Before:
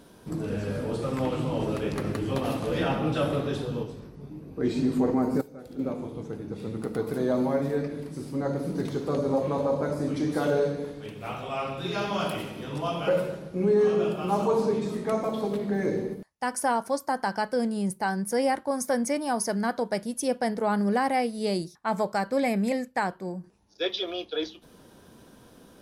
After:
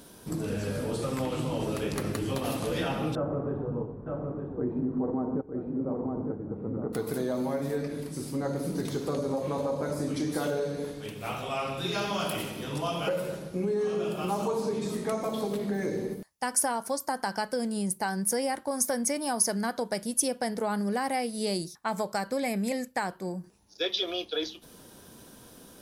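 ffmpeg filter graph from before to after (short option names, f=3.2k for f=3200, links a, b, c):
-filter_complex "[0:a]asettb=1/sr,asplit=3[a][b][c];[a]atrim=end=3.154[d];[b]atrim=start=3.15:end=6.93,asetpts=PTS-STARTPTS,afade=t=in:d=0.004:c=qsin,afade=t=out:st=3.776:d=0.004:c=qsin,lowpass=f=1.2k:w=0.5412,lowpass=f=1.2k:w=1.3066,aecho=1:1:910:0.398,atrim=end_sample=166698[e];[c]atrim=start=6.926[f];[d][e]acrossfade=d=0.004:c1=hsin:c2=qsin[g];[g][f]acrossfade=d=0.004:c1=qsin:c2=hsin,acompressor=threshold=-27dB:ratio=4,highshelf=f=4.7k:g=11"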